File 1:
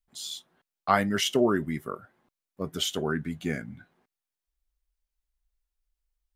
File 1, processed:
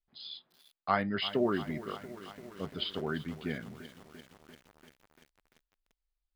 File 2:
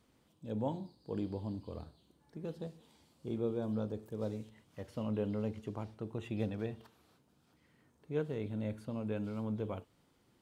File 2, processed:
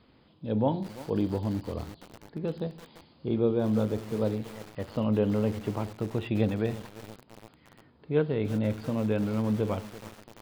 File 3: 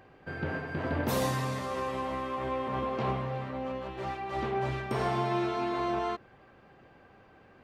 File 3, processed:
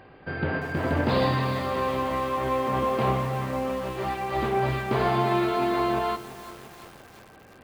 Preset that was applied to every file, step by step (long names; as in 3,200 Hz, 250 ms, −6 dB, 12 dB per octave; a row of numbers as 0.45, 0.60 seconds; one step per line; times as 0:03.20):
linear-phase brick-wall low-pass 5,100 Hz
feedback echo at a low word length 343 ms, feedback 80%, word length 7 bits, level −14.5 dB
normalise the peak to −12 dBFS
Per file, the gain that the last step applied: −6.0, +10.0, +6.0 decibels